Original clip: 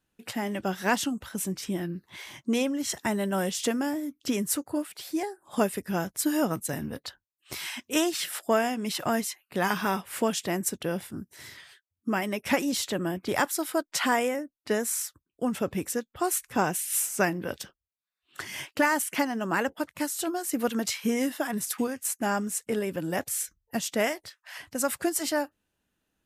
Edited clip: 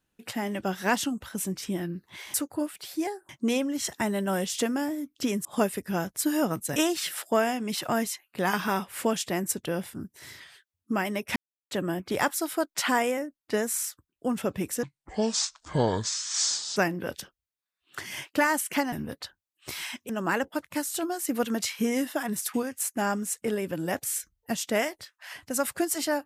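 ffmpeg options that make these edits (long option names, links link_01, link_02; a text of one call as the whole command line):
ffmpeg -i in.wav -filter_complex "[0:a]asplit=11[link_01][link_02][link_03][link_04][link_05][link_06][link_07][link_08][link_09][link_10][link_11];[link_01]atrim=end=2.342[link_12];[link_02]atrim=start=4.498:end=5.452[link_13];[link_03]atrim=start=2.338:end=4.502[link_14];[link_04]atrim=start=5.448:end=6.762[link_15];[link_05]atrim=start=7.928:end=12.53,asetpts=PTS-STARTPTS,afade=type=out:start_time=4.598:duration=0.004:curve=hsin[link_16];[link_06]atrim=start=12.53:end=12.88,asetpts=PTS-STARTPTS,volume=0[link_17];[link_07]atrim=start=12.88:end=16.004,asetpts=PTS-STARTPTS,afade=type=in:duration=0.004:curve=hsin[link_18];[link_08]atrim=start=16:end=17.18,asetpts=PTS-STARTPTS,asetrate=26901,aresample=44100,atrim=end_sample=85308,asetpts=PTS-STARTPTS[link_19];[link_09]atrim=start=17.176:end=19.342[link_20];[link_10]atrim=start=6.758:end=7.932[link_21];[link_11]atrim=start=19.338[link_22];[link_12][link_13]acrossfade=duration=0.004:curve1=hsin:curve2=hsin[link_23];[link_23][link_14]acrossfade=duration=0.004:curve1=hsin:curve2=hsin[link_24];[link_24][link_15]acrossfade=duration=0.004:curve1=hsin:curve2=hsin[link_25];[link_16][link_17][link_18]concat=n=3:v=0:a=1[link_26];[link_25][link_26]acrossfade=duration=0.004:curve1=hsin:curve2=hsin[link_27];[link_27][link_19]acrossfade=duration=0.004:curve1=hsin:curve2=hsin[link_28];[link_28][link_20]acrossfade=duration=0.004:curve1=hsin:curve2=hsin[link_29];[link_29][link_21]acrossfade=duration=0.004:curve1=hsin:curve2=hsin[link_30];[link_30][link_22]acrossfade=duration=0.004:curve1=hsin:curve2=hsin" out.wav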